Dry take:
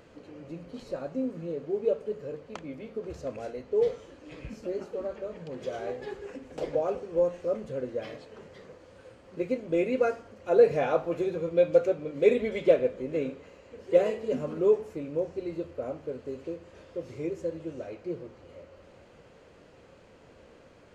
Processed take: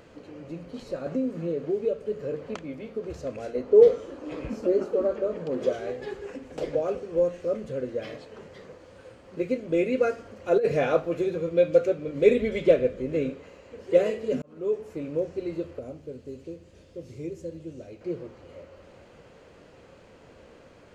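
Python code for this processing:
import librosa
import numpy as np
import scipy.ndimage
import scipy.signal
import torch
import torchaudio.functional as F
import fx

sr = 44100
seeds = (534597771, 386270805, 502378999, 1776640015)

y = fx.band_squash(x, sr, depth_pct=70, at=(1.06, 2.55))
y = fx.band_shelf(y, sr, hz=550.0, db=8.0, octaves=2.9, at=(3.55, 5.73))
y = fx.over_compress(y, sr, threshold_db=-20.0, ratio=-0.5, at=(10.18, 11.0))
y = fx.low_shelf(y, sr, hz=110.0, db=9.0, at=(12.08, 13.33))
y = fx.peak_eq(y, sr, hz=1100.0, db=-13.0, octaves=2.7, at=(15.79, 18.01))
y = fx.edit(y, sr, fx.fade_in_span(start_s=14.42, length_s=0.63), tone=tone)
y = fx.dynamic_eq(y, sr, hz=870.0, q=2.2, threshold_db=-45.0, ratio=4.0, max_db=-8)
y = F.gain(torch.from_numpy(y), 3.0).numpy()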